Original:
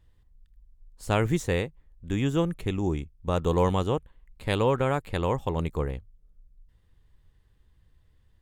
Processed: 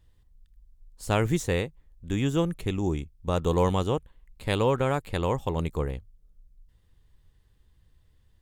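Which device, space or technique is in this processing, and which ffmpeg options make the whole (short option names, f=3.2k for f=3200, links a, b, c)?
exciter from parts: -filter_complex "[0:a]asplit=2[a][b];[b]highpass=2.6k,asoftclip=type=tanh:threshold=-34.5dB,volume=-5.5dB[c];[a][c]amix=inputs=2:normalize=0"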